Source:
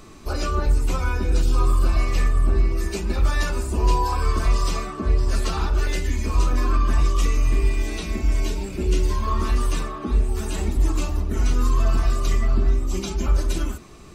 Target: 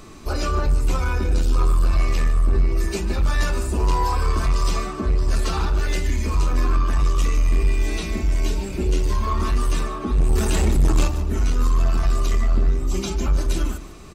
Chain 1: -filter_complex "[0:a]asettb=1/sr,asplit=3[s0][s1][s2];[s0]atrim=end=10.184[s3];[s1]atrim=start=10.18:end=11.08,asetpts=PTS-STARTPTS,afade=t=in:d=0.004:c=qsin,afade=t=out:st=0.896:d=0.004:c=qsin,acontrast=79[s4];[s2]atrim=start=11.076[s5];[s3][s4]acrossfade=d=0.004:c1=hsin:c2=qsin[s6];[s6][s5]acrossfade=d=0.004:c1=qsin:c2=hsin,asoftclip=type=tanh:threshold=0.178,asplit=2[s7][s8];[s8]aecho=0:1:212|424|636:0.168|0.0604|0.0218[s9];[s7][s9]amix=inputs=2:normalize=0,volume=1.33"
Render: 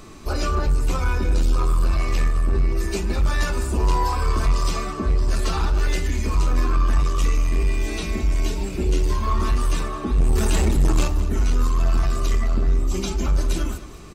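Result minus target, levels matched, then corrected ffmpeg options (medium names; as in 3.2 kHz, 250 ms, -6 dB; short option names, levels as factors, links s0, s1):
echo 64 ms late
-filter_complex "[0:a]asettb=1/sr,asplit=3[s0][s1][s2];[s0]atrim=end=10.184[s3];[s1]atrim=start=10.18:end=11.08,asetpts=PTS-STARTPTS,afade=t=in:d=0.004:c=qsin,afade=t=out:st=0.896:d=0.004:c=qsin,acontrast=79[s4];[s2]atrim=start=11.076[s5];[s3][s4]acrossfade=d=0.004:c1=hsin:c2=qsin[s6];[s6][s5]acrossfade=d=0.004:c1=qsin:c2=hsin,asoftclip=type=tanh:threshold=0.178,asplit=2[s7][s8];[s8]aecho=0:1:148|296|444:0.168|0.0604|0.0218[s9];[s7][s9]amix=inputs=2:normalize=0,volume=1.33"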